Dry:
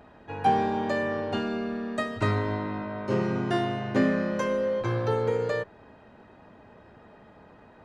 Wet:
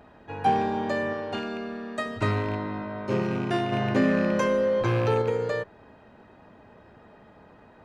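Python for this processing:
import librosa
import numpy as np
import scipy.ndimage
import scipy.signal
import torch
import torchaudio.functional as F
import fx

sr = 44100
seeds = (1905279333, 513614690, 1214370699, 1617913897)

y = fx.rattle_buzz(x, sr, strikes_db=-29.0, level_db=-32.0)
y = fx.low_shelf(y, sr, hz=320.0, db=-6.5, at=(1.13, 2.06))
y = fx.env_flatten(y, sr, amount_pct=50, at=(3.72, 5.22))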